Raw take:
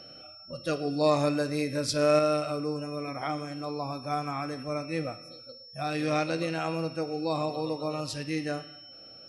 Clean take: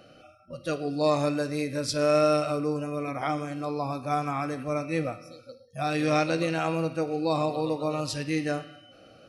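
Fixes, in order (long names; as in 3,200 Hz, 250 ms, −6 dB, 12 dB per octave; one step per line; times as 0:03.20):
notch filter 5,400 Hz, Q 30
level correction +3.5 dB, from 0:02.19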